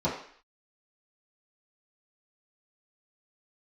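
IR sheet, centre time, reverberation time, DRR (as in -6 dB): 34 ms, 0.55 s, -11.0 dB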